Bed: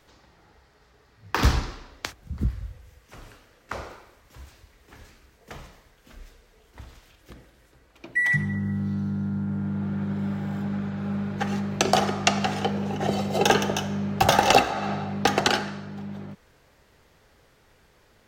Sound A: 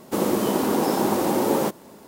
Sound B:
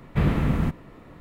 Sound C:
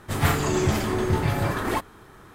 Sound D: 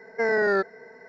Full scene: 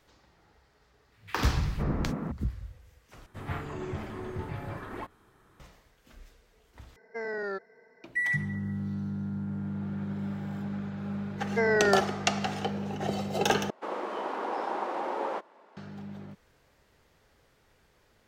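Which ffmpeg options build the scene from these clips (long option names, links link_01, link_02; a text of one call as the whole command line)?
ffmpeg -i bed.wav -i cue0.wav -i cue1.wav -i cue2.wav -i cue3.wav -filter_complex "[4:a]asplit=2[link_01][link_02];[0:a]volume=-6dB[link_03];[2:a]acrossover=split=150|1800[link_04][link_05][link_06];[link_04]adelay=280[link_07];[link_05]adelay=510[link_08];[link_07][link_08][link_06]amix=inputs=3:normalize=0[link_09];[3:a]acrossover=split=3100[link_10][link_11];[link_11]acompressor=threshold=-51dB:ratio=4:attack=1:release=60[link_12];[link_10][link_12]amix=inputs=2:normalize=0[link_13];[1:a]highpass=700,lowpass=2000[link_14];[link_03]asplit=4[link_15][link_16][link_17][link_18];[link_15]atrim=end=3.264[link_19];[link_13]atrim=end=2.34,asetpts=PTS-STARTPTS,volume=-13.5dB[link_20];[link_16]atrim=start=5.596:end=6.964[link_21];[link_01]atrim=end=1.08,asetpts=PTS-STARTPTS,volume=-12dB[link_22];[link_17]atrim=start=8.036:end=13.704[link_23];[link_14]atrim=end=2.07,asetpts=PTS-STARTPTS,volume=-4dB[link_24];[link_18]atrim=start=15.766[link_25];[link_09]atrim=end=1.2,asetpts=PTS-STARTPTS,volume=-6dB,afade=type=in:duration=0.004:curve=hsin,afade=type=out:start_time=1.196:duration=0.004:curve=hsin,adelay=1120[link_26];[link_02]atrim=end=1.08,asetpts=PTS-STARTPTS,volume=-2dB,afade=type=in:duration=0.004:curve=hsin,afade=type=out:start_time=1.076:duration=0.004:curve=hsin,adelay=501858S[link_27];[link_19][link_20]acrossfade=duration=0.004:curve1=hsin:curve2=hsin[link_28];[link_28][link_21]acrossfade=duration=0.004:curve1=hsin:curve2=hsin[link_29];[link_29][link_22]acrossfade=duration=0.004:curve1=hsin:curve2=hsin[link_30];[link_30][link_23]acrossfade=duration=0.004:curve1=hsin:curve2=hsin[link_31];[link_31][link_24]acrossfade=duration=0.004:curve1=hsin:curve2=hsin[link_32];[link_32][link_25]acrossfade=duration=0.004:curve1=hsin:curve2=hsin[link_33];[link_33][link_26][link_27]amix=inputs=3:normalize=0" out.wav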